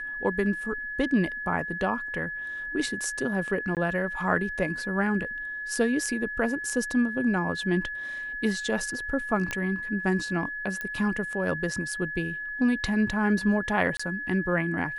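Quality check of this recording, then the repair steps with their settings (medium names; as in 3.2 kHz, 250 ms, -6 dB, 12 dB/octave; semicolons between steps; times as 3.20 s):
whine 1.7 kHz -32 dBFS
3.75–3.77 s: dropout 18 ms
9.51 s: pop -15 dBFS
10.81 s: pop -19 dBFS
13.97–13.99 s: dropout 25 ms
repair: de-click; band-stop 1.7 kHz, Q 30; interpolate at 3.75 s, 18 ms; interpolate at 13.97 s, 25 ms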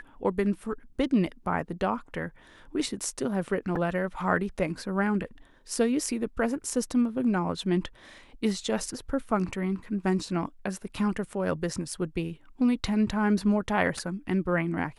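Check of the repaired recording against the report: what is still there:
nothing left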